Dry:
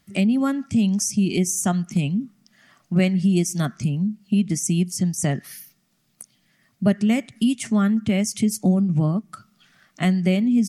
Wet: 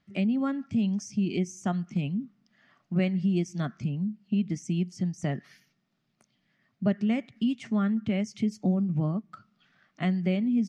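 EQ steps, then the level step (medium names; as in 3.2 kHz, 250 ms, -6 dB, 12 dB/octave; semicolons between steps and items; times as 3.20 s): distance through air 180 m; bass shelf 67 Hz -8 dB; -6.0 dB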